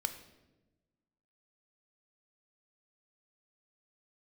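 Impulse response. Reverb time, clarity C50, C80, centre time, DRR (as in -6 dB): 1.1 s, 11.0 dB, 13.0 dB, 11 ms, 8.0 dB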